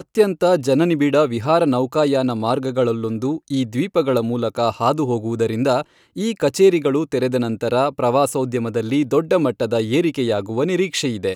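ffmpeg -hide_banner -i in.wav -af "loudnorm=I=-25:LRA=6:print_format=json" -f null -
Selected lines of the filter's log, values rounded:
"input_i" : "-19.2",
"input_tp" : "-2.6",
"input_lra" : "1.1",
"input_thresh" : "-29.2",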